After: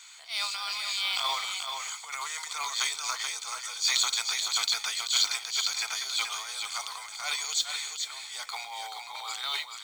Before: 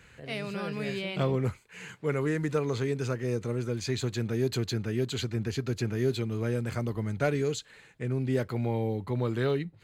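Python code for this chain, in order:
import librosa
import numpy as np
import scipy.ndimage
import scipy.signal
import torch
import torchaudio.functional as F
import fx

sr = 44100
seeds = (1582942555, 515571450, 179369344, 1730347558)

y = scipy.signal.sosfilt(scipy.signal.butter(8, 670.0, 'highpass', fs=sr, output='sos'), x)
y = fx.band_shelf(y, sr, hz=5400.0, db=15.5, octaves=1.7)
y = y + 0.72 * np.pad(y, (int(0.9 * sr / 1000.0), 0))[:len(y)]
y = fx.transient(y, sr, attack_db=-10, sustain_db=10)
y = fx.mod_noise(y, sr, seeds[0], snr_db=21)
y = y + 10.0 ** (-6.0 / 20.0) * np.pad(y, (int(431 * sr / 1000.0), 0))[:len(y)]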